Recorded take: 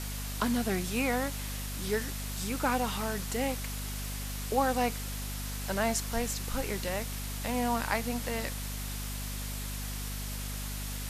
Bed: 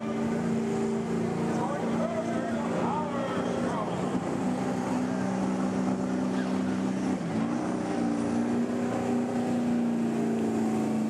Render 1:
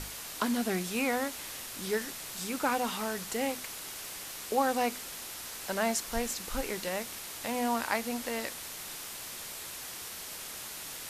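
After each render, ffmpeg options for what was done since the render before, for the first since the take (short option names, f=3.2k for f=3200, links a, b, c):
-af "bandreject=f=50:t=h:w=6,bandreject=f=100:t=h:w=6,bandreject=f=150:t=h:w=6,bandreject=f=200:t=h:w=6,bandreject=f=250:t=h:w=6"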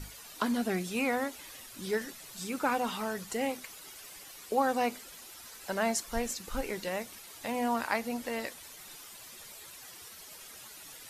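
-af "afftdn=nr=11:nf=-43"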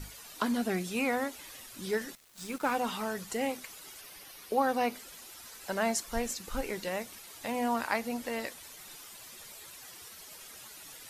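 -filter_complex "[0:a]asettb=1/sr,asplit=3[a][b][c];[a]atrim=end=2.154[d];[b]atrim=start=2.15:end=2.75,asetpts=PTS-STARTPTS,afade=t=in:d=0.004:c=qsin,afade=t=out:st=0.596:d=0.004:c=qsin,aeval=exprs='sgn(val(0))*max(abs(val(0))-0.00531,0)':c=same[e];[c]atrim=start=2.746[f];[d][e]acrossfade=d=0.004:c1=hsin:c2=qsin[g];[g][f]acrossfade=d=0.004:c1=qsin:c2=hsin,asettb=1/sr,asplit=3[h][i][j];[h]atrim=end=4.014[k];[i]atrim=start=4.01:end=4.96,asetpts=PTS-STARTPTS,afade=t=in:d=0.004:c=qsin,afade=t=out:st=0.946:d=0.004:c=qsin,equalizer=f=7.5k:t=o:w=0.29:g=-9.5[l];[j]atrim=start=4.956[m];[k][l]acrossfade=d=0.004:c1=hsin:c2=qsin[n];[n][m]acrossfade=d=0.004:c1=qsin:c2=hsin"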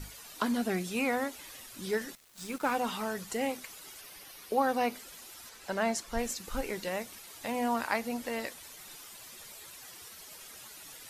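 -filter_complex "[0:a]asettb=1/sr,asplit=3[a][b][c];[a]atrim=end=5.494[d];[b]atrim=start=5.49:end=6.19,asetpts=PTS-STARTPTS,afade=t=in:d=0.004:c=qsin,afade=t=out:st=0.696:d=0.004:c=qsin,highshelf=f=8.3k:g=-9[e];[c]atrim=start=6.186[f];[d][e]acrossfade=d=0.004:c1=hsin:c2=qsin[g];[g][f]acrossfade=d=0.004:c1=qsin:c2=hsin"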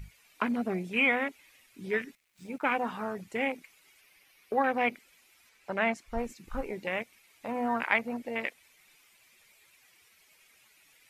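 -af "afwtdn=0.0141,equalizer=f=2.3k:t=o:w=0.64:g=13"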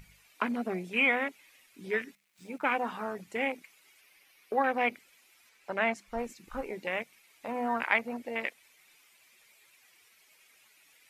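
-af "lowshelf=f=140:g=-10,bandreject=f=50:t=h:w=6,bandreject=f=100:t=h:w=6,bandreject=f=150:t=h:w=6,bandreject=f=200:t=h:w=6"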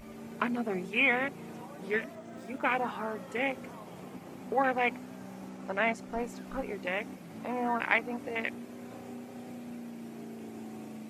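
-filter_complex "[1:a]volume=-16dB[a];[0:a][a]amix=inputs=2:normalize=0"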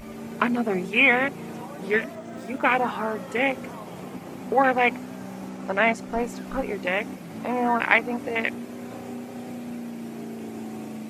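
-af "volume=8dB"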